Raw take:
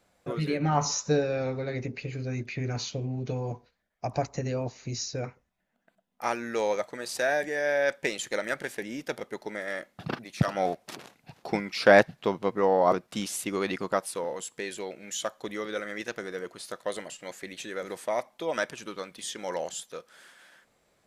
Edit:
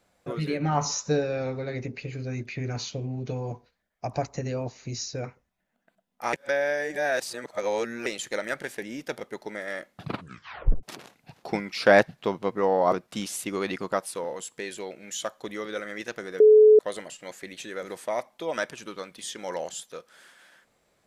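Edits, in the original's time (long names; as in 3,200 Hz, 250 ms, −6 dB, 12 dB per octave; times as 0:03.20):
0:06.33–0:08.06: reverse
0:10.02: tape stop 0.81 s
0:16.40–0:16.79: beep over 429 Hz −10.5 dBFS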